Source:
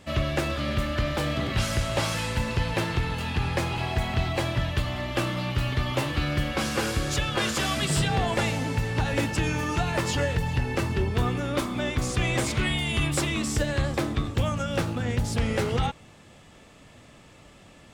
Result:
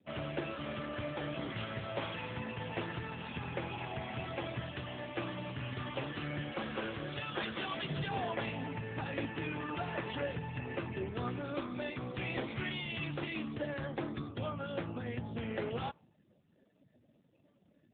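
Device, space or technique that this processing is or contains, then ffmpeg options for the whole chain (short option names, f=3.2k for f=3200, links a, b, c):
mobile call with aggressive noise cancelling: -filter_complex "[0:a]asettb=1/sr,asplit=3[a][b][c];[a]atrim=end=2.974[d];[b]atrim=start=2.97:end=3.69,asetpts=PTS-STARTPTS,afade=t=in:d=0.004:c=qsin,afade=t=out:st=0.716:d=0.004:c=qsin,lowpass=f=12k:w=0.5412,lowpass=f=12k:w=1.3066[e];[c]atrim=start=3.686[f];[d][e]acrossfade=d=0.004:c1=hsin:c2=qsin[g];[g][f]acrossfade=d=0.004:c1=qsin:c2=hsin,highpass=f=160:p=1,afftdn=nr=35:nf=-46,volume=-8dB" -ar 8000 -c:a libopencore_amrnb -b:a 7950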